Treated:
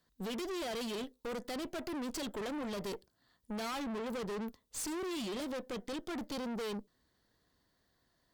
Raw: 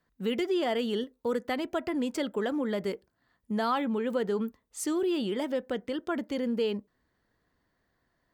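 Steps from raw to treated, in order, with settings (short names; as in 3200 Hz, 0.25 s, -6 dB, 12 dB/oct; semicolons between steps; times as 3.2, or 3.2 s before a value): resonant high shelf 2900 Hz +6.5 dB, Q 1.5; tube stage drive 40 dB, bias 0.75; gain +3 dB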